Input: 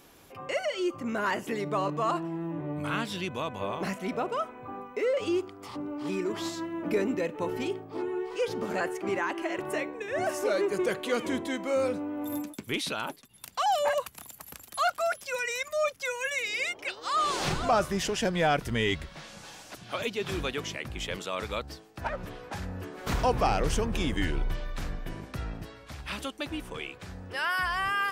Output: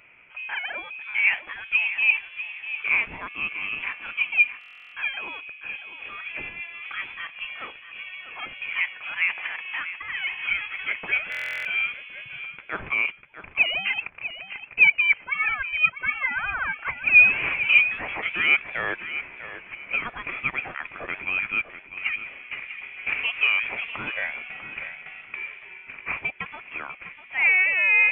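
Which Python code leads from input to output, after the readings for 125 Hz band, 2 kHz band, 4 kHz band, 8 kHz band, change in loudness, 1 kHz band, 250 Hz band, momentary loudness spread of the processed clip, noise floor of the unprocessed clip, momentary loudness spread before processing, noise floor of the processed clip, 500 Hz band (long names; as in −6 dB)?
below −10 dB, +13.0 dB, +2.5 dB, below −25 dB, +7.5 dB, −6.0 dB, −15.5 dB, 18 LU, −52 dBFS, 12 LU, −47 dBFS, −15.0 dB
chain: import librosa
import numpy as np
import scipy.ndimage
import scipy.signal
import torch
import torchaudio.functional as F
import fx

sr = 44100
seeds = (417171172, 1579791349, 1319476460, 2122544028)

y = fx.highpass_res(x, sr, hz=1300.0, q=6.3)
y = fx.echo_feedback(y, sr, ms=646, feedback_pct=27, wet_db=-12)
y = fx.freq_invert(y, sr, carrier_hz=3700)
y = fx.buffer_glitch(y, sr, at_s=(4.59, 11.3), block=1024, repeats=14)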